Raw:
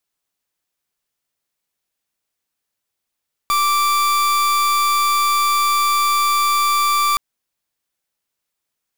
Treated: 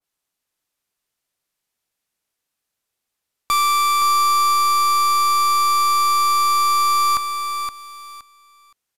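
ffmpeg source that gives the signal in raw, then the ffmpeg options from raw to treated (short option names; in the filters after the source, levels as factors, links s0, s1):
-f lavfi -i "aevalsrc='0.15*(2*lt(mod(1170*t,1),0.41)-1)':d=3.67:s=44100"
-filter_complex "[0:a]asplit=2[s0][s1];[s1]aecho=0:1:519|1038|1557:0.447|0.0893|0.0179[s2];[s0][s2]amix=inputs=2:normalize=0,aresample=32000,aresample=44100,adynamicequalizer=threshold=0.0398:dfrequency=1700:dqfactor=0.7:tfrequency=1700:tqfactor=0.7:attack=5:release=100:ratio=0.375:range=1.5:mode=cutabove:tftype=highshelf"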